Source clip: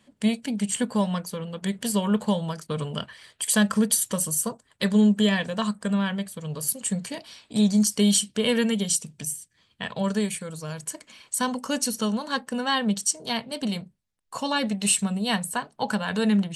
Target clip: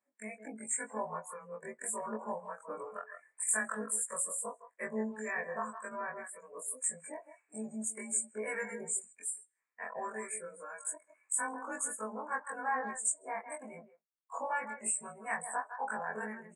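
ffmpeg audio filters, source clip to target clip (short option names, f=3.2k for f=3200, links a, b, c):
-filter_complex "[0:a]afftfilt=real='re':imag='-im':win_size=2048:overlap=0.75,asplit=2[a][b];[b]acompressor=threshold=-34dB:ratio=6,volume=-1.5dB[c];[a][c]amix=inputs=2:normalize=0,asuperstop=centerf=4100:order=12:qfactor=0.9,asplit=2[d][e];[e]adelay=160,highpass=300,lowpass=3.4k,asoftclip=type=hard:threshold=-20dB,volume=-9dB[f];[d][f]amix=inputs=2:normalize=0,acrossover=split=1000[g][h];[g]aeval=exprs='val(0)*(1-0.5/2+0.5/2*cos(2*PI*1.8*n/s))':c=same[i];[h]aeval=exprs='val(0)*(1-0.5/2-0.5/2*cos(2*PI*1.8*n/s))':c=same[j];[i][j]amix=inputs=2:normalize=0,highpass=570,afftdn=nr=16:nf=-44,aresample=22050,aresample=44100,volume=-2.5dB"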